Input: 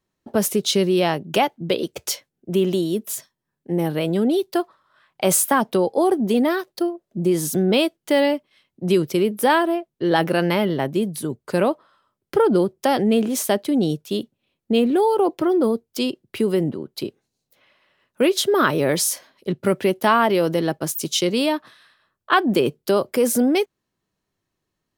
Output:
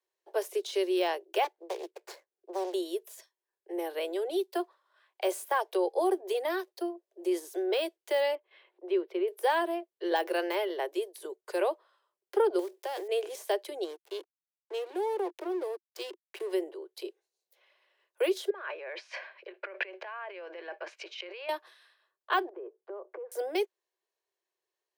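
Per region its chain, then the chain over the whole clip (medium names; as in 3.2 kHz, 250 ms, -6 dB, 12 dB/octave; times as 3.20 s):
1.44–2.74 s: median filter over 15 samples + dynamic bell 510 Hz, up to -6 dB, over -33 dBFS, Q 0.93 + loudspeaker Doppler distortion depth 0.94 ms
8.35–9.28 s: distance through air 470 m + upward compressor, threshold -35 dBFS
12.59–13.09 s: block-companded coder 5-bit + transient shaper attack +2 dB, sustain +10 dB + compression 3:1, threshold -24 dBFS
13.84–16.53 s: compression 2:1, threshold -22 dBFS + hysteresis with a dead band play -28 dBFS
18.50–21.49 s: compressor with a negative ratio -30 dBFS + cabinet simulation 410–3600 Hz, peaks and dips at 410 Hz -4 dB, 600 Hz +4 dB, 1.1 kHz +3 dB, 1.6 kHz +9 dB, 2.4 kHz +10 dB, 3.5 kHz -7 dB
22.49–23.32 s: low-pass 1.4 kHz 24 dB/octave + compression 10:1, threshold -28 dBFS
whole clip: de-esser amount 60%; steep high-pass 350 Hz 96 dB/octave; band-stop 1.3 kHz, Q 8.2; trim -8 dB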